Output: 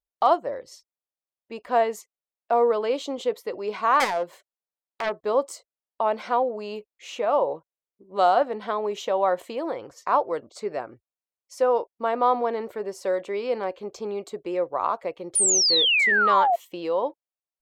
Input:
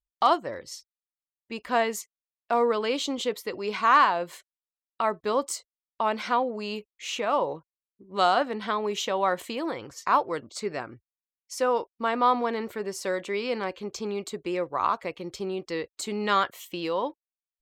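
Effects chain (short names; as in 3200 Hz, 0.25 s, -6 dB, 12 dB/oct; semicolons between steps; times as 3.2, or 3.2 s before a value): 4–5.23 self-modulated delay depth 0.5 ms; bell 600 Hz +12.5 dB 1.7 oct; 15.35–16.56 painted sound fall 660–9900 Hz -13 dBFS; gain -7 dB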